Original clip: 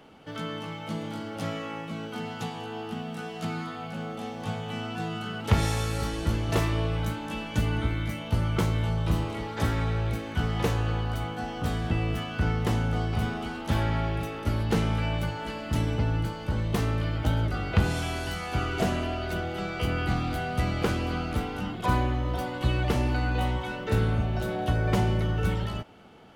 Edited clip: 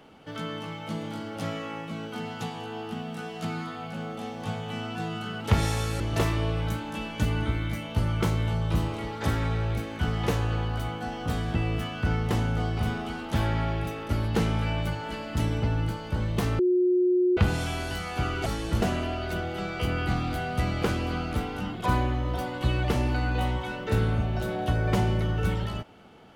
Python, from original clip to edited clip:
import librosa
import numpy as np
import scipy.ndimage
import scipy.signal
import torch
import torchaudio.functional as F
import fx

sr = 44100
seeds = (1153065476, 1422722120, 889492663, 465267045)

y = fx.edit(x, sr, fx.move(start_s=6.0, length_s=0.36, to_s=18.82),
    fx.bleep(start_s=16.95, length_s=0.78, hz=361.0, db=-19.0), tone=tone)